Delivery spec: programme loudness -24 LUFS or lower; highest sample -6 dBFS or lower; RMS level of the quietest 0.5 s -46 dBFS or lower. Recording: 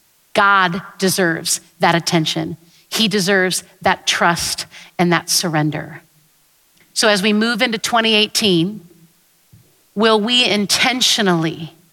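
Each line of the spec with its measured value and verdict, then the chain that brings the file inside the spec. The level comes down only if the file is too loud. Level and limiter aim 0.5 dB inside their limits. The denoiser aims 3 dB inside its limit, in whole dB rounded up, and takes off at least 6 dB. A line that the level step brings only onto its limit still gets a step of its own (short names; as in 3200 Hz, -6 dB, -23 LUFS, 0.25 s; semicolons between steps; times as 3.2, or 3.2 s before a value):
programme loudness -15.5 LUFS: fail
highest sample -2.5 dBFS: fail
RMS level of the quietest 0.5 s -56 dBFS: OK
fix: gain -9 dB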